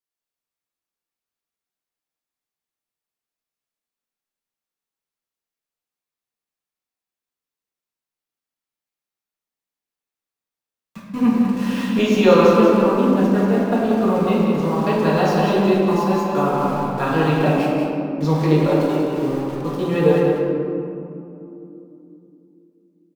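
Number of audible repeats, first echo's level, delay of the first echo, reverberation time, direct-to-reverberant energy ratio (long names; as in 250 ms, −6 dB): 1, −5.5 dB, 186 ms, 3.0 s, −7.0 dB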